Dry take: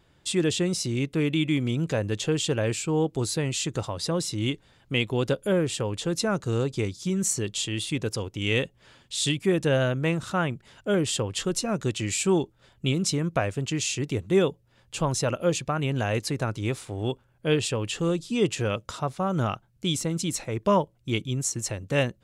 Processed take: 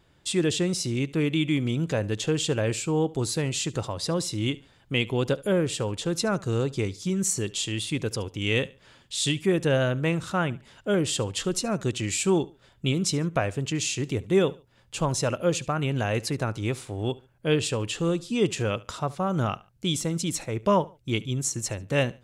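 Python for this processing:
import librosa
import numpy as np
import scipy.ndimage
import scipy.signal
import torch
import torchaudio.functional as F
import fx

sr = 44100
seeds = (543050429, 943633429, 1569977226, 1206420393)

y = fx.echo_feedback(x, sr, ms=72, feedback_pct=29, wet_db=-21.0)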